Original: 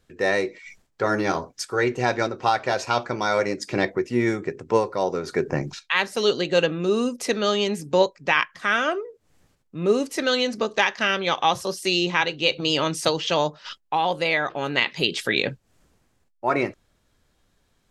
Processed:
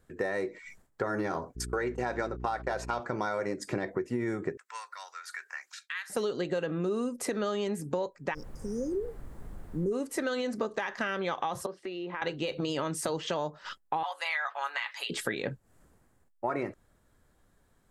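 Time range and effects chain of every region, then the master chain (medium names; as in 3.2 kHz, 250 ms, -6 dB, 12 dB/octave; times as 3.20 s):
1.55–2.99 s: gate -35 dBFS, range -24 dB + bass shelf 130 Hz -12 dB + mains buzz 60 Hz, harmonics 7, -39 dBFS -6 dB/octave
4.57–6.10 s: high-pass 1.5 kHz 24 dB/octave + compression 2.5:1, threshold -32 dBFS
8.33–9.91 s: brick-wall FIR band-stop 550–4700 Hz + added noise brown -42 dBFS
11.66–12.22 s: low-pass 5.2 kHz + three-band isolator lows -14 dB, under 210 Hz, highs -22 dB, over 3.3 kHz + compression 3:1, threshold -36 dBFS
14.03–15.10 s: high-pass 900 Hz 24 dB/octave + comb 7.1 ms, depth 51%
whole clip: peak limiter -13.5 dBFS; high-order bell 3.8 kHz -8.5 dB; compression, threshold -28 dBFS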